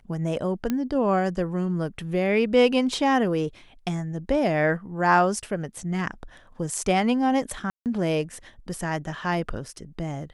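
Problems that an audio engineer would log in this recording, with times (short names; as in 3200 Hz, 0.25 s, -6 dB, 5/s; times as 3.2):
0.7 pop -13 dBFS
7.7–7.86 gap 0.158 s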